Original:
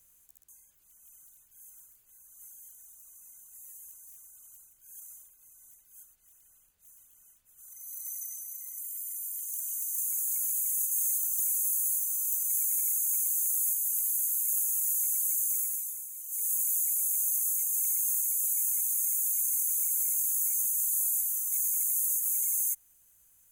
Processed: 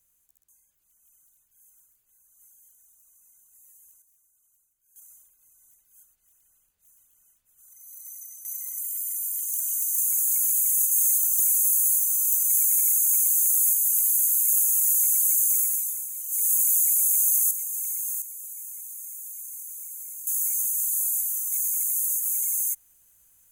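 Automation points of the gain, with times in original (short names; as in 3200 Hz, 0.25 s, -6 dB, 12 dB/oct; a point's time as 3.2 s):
-6 dB
from 4.02 s -14 dB
from 4.96 s -3 dB
from 8.45 s +7.5 dB
from 17.51 s -1 dB
from 18.22 s -9.5 dB
from 20.27 s +3 dB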